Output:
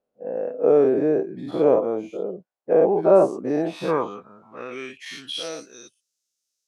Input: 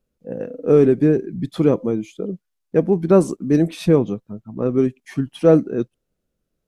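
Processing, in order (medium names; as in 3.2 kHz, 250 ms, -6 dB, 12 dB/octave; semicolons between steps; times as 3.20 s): every event in the spectrogram widened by 120 ms; band-pass sweep 690 Hz -> 5.9 kHz, 3.49–5.73 s; treble shelf 3.6 kHz +10 dB; trim +2.5 dB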